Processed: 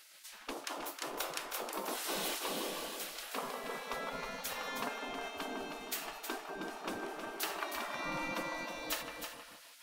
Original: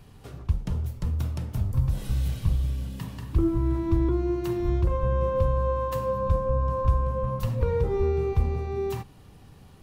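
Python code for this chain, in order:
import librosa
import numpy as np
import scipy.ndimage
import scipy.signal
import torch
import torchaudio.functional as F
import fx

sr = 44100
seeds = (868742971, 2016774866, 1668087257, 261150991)

y = fx.echo_banded(x, sr, ms=155, feedback_pct=58, hz=560.0, wet_db=-3.0)
y = fx.spec_gate(y, sr, threshold_db=-30, keep='weak')
y = y + 10.0 ** (-7.5 / 20.0) * np.pad(y, (int(316 * sr / 1000.0), 0))[:len(y)]
y = y * 10.0 ** (8.5 / 20.0)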